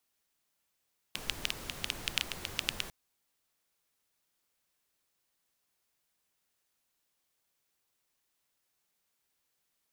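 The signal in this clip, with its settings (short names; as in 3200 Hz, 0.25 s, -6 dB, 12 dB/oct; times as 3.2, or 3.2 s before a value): rain from filtered ticks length 1.75 s, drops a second 8.6, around 2900 Hz, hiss -5 dB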